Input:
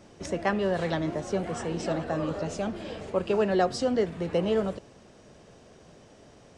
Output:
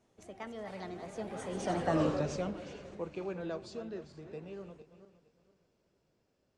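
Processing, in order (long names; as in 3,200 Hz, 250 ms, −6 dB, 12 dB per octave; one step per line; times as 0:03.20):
feedback delay that plays each chunk backwards 208 ms, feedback 50%, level −10 dB
source passing by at 0:02.00, 39 m/s, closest 9.1 metres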